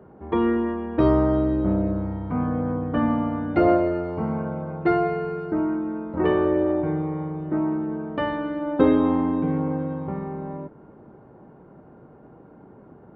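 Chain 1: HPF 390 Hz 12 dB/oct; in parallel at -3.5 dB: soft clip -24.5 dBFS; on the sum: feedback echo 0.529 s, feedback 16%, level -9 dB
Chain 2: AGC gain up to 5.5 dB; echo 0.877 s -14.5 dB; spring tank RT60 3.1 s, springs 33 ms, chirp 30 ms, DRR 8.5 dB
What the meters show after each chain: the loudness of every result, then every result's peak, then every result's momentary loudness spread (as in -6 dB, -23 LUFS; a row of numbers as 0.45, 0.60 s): -24.5, -20.0 LUFS; -8.0, -2.5 dBFS; 11, 10 LU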